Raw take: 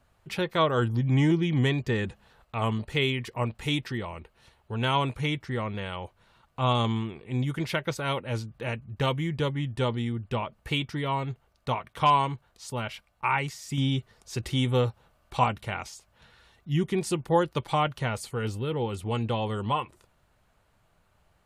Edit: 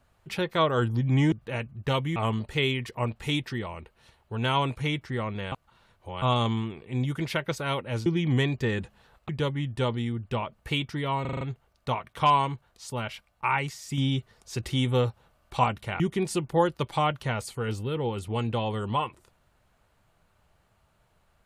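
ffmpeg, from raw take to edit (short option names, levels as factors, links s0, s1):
-filter_complex "[0:a]asplit=13[s0][s1][s2][s3][s4][s5][s6][s7][s8][s9][s10][s11][s12];[s0]atrim=end=1.322[s13];[s1]atrim=start=8.448:end=9.292[s14];[s2]atrim=start=2.548:end=5.912[s15];[s3]atrim=start=5.908:end=6.612,asetpts=PTS-STARTPTS,areverse[s16];[s4]atrim=start=6.608:end=8.452[s17];[s5]atrim=start=1.318:end=2.552[s18];[s6]atrim=start=9.288:end=11.252[s19];[s7]atrim=start=11.208:end=11.252[s20];[s8]atrim=start=11.208:end=11.252[s21];[s9]atrim=start=11.208:end=11.252[s22];[s10]atrim=start=11.208:end=11.252[s23];[s11]atrim=start=11.208:end=15.802[s24];[s12]atrim=start=16.758[s25];[s13][s14]acrossfade=d=0.004:c1=hsin:c2=hsin[s26];[s26][s15]acrossfade=d=0.004:c1=hsin:c2=hsin[s27];[s27][s16]acrossfade=d=0.004:c1=hsin:c2=hsin[s28];[s28][s17]acrossfade=d=0.004:c1=hsin:c2=hsin[s29];[s29][s18]acrossfade=d=0.004:c1=hsin:c2=hsin[s30];[s30][s19]acrossfade=d=0.004:c1=hsin:c2=hsin[s31];[s31][s20]acrossfade=d=0.004:c1=hsin:c2=hsin[s32];[s32][s21]acrossfade=d=0.004:c1=hsin:c2=hsin[s33];[s33][s22]acrossfade=d=0.004:c1=hsin:c2=hsin[s34];[s34][s23]acrossfade=d=0.004:c1=hsin:c2=hsin[s35];[s35][s24]acrossfade=d=0.004:c1=hsin:c2=hsin[s36];[s36][s25]acrossfade=d=0.004:c1=hsin:c2=hsin"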